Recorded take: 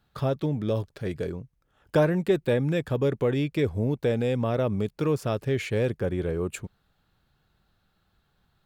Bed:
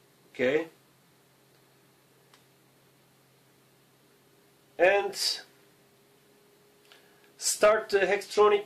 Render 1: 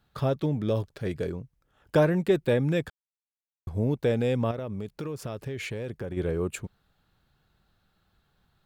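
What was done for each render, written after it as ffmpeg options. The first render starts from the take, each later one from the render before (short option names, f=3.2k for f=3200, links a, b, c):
-filter_complex "[0:a]asettb=1/sr,asplit=3[a][b][c];[a]atrim=end=4.514[d];[b]atrim=start=4.51:end=6.17,asetpts=PTS-STARTPTS,afade=t=in:d=0.004:c=qsin,afade=t=out:st=1.656:d=0.004:c=qsin,acompressor=threshold=-30dB:ratio=10:attack=3.2:release=140:knee=1:detection=peak[e];[c]atrim=start=6.166[f];[d][e]acrossfade=d=0.004:c1=hsin:c2=qsin[g];[g][f]acrossfade=d=0.004:c1=qsin:c2=hsin,asplit=3[h][i][j];[h]atrim=end=2.9,asetpts=PTS-STARTPTS,afade=t=out:st=2.896:d=0.004:c=hsin[k];[i]atrim=start=2.9:end=3.67,asetpts=PTS-STARTPTS,volume=0[l];[j]atrim=start=3.67,asetpts=PTS-STARTPTS,afade=t=in:d=0.004:c=hsin[m];[k][l][m]concat=n=3:v=0:a=1"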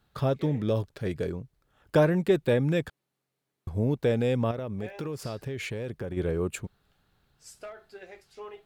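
-filter_complex "[1:a]volume=-21.5dB[a];[0:a][a]amix=inputs=2:normalize=0"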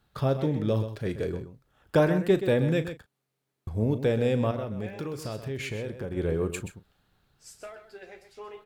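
-filter_complex "[0:a]asplit=2[a][b];[b]adelay=37,volume=-13dB[c];[a][c]amix=inputs=2:normalize=0,asplit=2[d][e];[e]aecho=0:1:128:0.299[f];[d][f]amix=inputs=2:normalize=0"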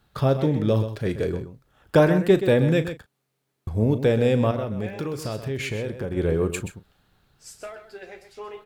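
-af "volume=5dB"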